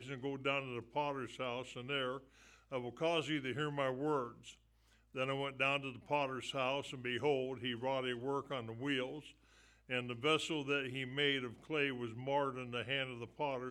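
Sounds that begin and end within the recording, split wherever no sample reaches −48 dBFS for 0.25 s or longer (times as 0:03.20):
0:02.71–0:04.51
0:05.15–0:09.30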